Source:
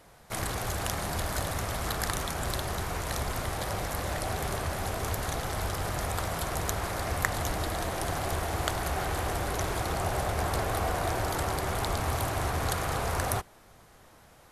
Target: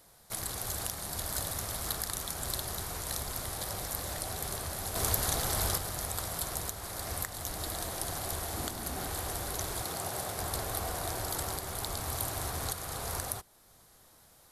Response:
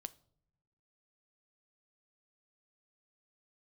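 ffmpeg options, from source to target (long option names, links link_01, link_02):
-filter_complex "[0:a]aexciter=amount=2.7:drive=5.1:freq=3600,alimiter=limit=-8dB:level=0:latency=1:release=435,asettb=1/sr,asplit=3[link_01][link_02][link_03];[link_01]atrim=end=4.954[link_04];[link_02]atrim=start=4.95:end=5.78,asetpts=PTS-STARTPTS,afade=type=in:duration=0.004:curve=qsin,afade=type=out:start_time=0.826:duration=0.004:curve=qsin,acontrast=56[link_05];[link_03]atrim=start=5.776[link_06];[link_04][link_05]acrossfade=duration=0.004:curve1=hsin:curve2=qsin[link_07];[link_07][link_06]acrossfade=duration=0.004:curve1=qsin:curve2=hsin,asettb=1/sr,asplit=3[link_08][link_09][link_10];[link_08]atrim=end=8.574[link_11];[link_09]atrim=start=8.57:end=9.07,asetpts=PTS-STARTPTS,afade=type=in:duration=0.004:curve=qsin,afade=type=out:start_time=0.496:duration=0.004:curve=qsin,equalizer=frequency=240:width_type=o:width=0.68:gain=12.5[link_12];[link_10]atrim=start=9.066[link_13];[link_11][link_12]acrossfade=duration=0.004:curve1=hsin:curve2=qsin[link_14];[link_14][link_13]acrossfade=duration=0.004:curve1=qsin:curve2=hsin,asettb=1/sr,asplit=3[link_15][link_16][link_17];[link_15]atrim=end=9.844[link_18];[link_16]atrim=start=9.84:end=10.4,asetpts=PTS-STARTPTS,afade=type=in:duration=0.004:curve=qsin,afade=type=out:start_time=0.556:duration=0.004:curve=qsin,highpass=110[link_19];[link_17]atrim=start=10.396[link_20];[link_18][link_19]acrossfade=duration=0.004:curve1=hsin:curve2=qsin[link_21];[link_21][link_20]acrossfade=duration=0.004:curve1=qsin:curve2=hsin,volume=-7.5dB"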